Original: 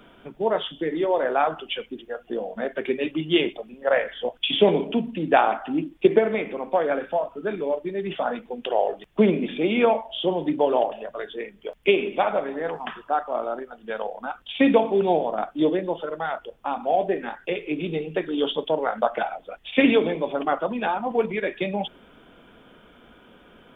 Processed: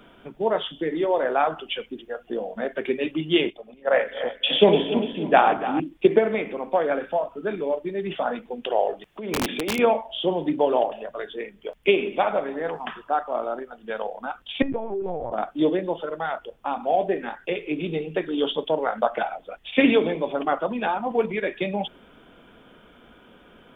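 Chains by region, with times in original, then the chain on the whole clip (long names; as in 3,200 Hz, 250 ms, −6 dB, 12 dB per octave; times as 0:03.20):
0:03.50–0:05.80: feedback delay that plays each chunk backwards 148 ms, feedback 70%, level −8.5 dB + multiband upward and downward expander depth 40%
0:09.05–0:09.79: low-shelf EQ 140 Hz −12 dB + compressor whose output falls as the input rises −27 dBFS + wrap-around overflow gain 18.5 dB
0:14.62–0:15.32: low-pass filter 1,400 Hz + downward compressor 5 to 1, threshold −25 dBFS + linear-prediction vocoder at 8 kHz pitch kept
whole clip: no processing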